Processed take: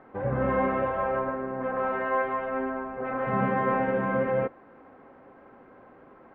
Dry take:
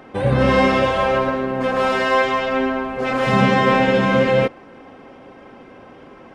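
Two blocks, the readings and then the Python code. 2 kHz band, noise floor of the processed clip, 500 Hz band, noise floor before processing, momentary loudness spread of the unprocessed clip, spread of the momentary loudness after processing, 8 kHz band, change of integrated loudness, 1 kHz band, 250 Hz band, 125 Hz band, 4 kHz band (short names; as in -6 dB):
-12.0 dB, -53 dBFS, -9.5 dB, -43 dBFS, 6 LU, 6 LU, n/a, -10.0 dB, -8.5 dB, -11.0 dB, -12.0 dB, under -25 dB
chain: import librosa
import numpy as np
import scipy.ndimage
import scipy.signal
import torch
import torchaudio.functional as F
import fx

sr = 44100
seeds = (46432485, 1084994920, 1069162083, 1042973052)

y = fx.dmg_noise_colour(x, sr, seeds[0], colour='white', level_db=-45.0)
y = scipy.signal.sosfilt(scipy.signal.butter(4, 1700.0, 'lowpass', fs=sr, output='sos'), y)
y = fx.low_shelf(y, sr, hz=380.0, db=-4.5)
y = F.gain(torch.from_numpy(y), -8.0).numpy()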